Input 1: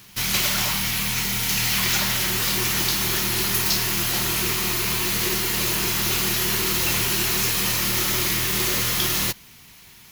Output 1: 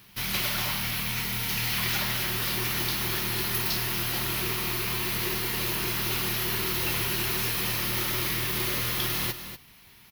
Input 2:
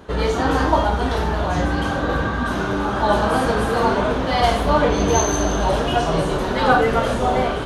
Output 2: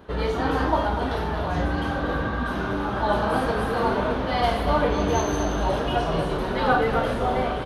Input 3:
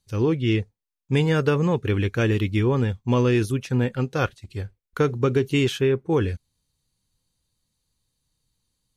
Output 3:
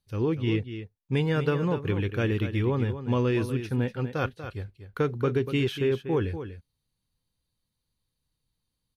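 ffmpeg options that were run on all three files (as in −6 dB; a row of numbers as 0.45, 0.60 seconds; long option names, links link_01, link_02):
-filter_complex "[0:a]equalizer=frequency=7200:width_type=o:width=0.71:gain=-10.5,asplit=2[link_01][link_02];[link_02]aecho=0:1:241:0.299[link_03];[link_01][link_03]amix=inputs=2:normalize=0,volume=-5dB"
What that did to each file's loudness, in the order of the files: −6.0, −5.0, −5.0 LU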